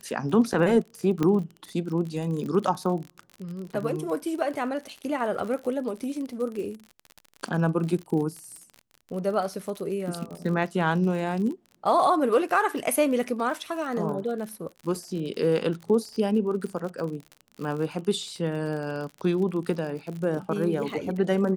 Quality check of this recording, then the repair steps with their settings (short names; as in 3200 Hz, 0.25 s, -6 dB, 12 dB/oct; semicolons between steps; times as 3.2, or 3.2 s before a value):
crackle 42/s -33 dBFS
1.23 pop -13 dBFS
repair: de-click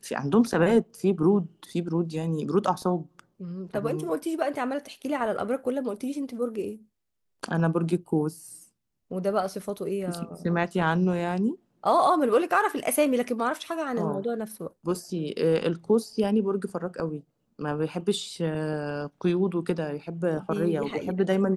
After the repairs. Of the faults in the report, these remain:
none